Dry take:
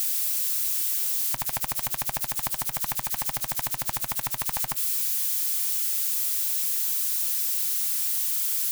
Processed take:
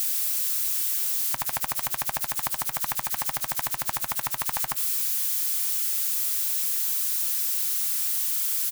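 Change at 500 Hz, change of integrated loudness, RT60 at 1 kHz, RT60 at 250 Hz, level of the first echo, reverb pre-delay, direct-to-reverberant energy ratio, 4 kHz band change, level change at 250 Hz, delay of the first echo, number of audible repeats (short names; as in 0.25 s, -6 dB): +0.5 dB, 0.0 dB, none, none, -23.0 dB, none, none, +0.5 dB, -1.5 dB, 89 ms, 1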